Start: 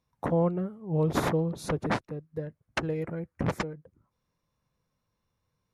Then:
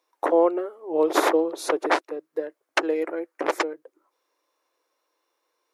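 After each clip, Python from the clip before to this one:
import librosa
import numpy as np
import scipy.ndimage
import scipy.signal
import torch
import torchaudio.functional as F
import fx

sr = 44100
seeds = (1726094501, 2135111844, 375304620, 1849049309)

y = scipy.signal.sosfilt(scipy.signal.ellip(4, 1.0, 40, 320.0, 'highpass', fs=sr, output='sos'), x)
y = y * 10.0 ** (9.0 / 20.0)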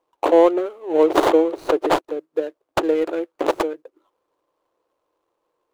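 y = scipy.ndimage.median_filter(x, 25, mode='constant')
y = y * 10.0 ** (6.0 / 20.0)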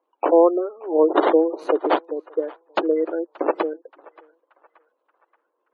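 y = scipy.signal.sosfilt(scipy.signal.butter(6, 200.0, 'highpass', fs=sr, output='sos'), x)
y = fx.spec_gate(y, sr, threshold_db=-25, keep='strong')
y = fx.echo_banded(y, sr, ms=578, feedback_pct=50, hz=1500.0, wet_db=-20.5)
y = y * 10.0 ** (-1.0 / 20.0)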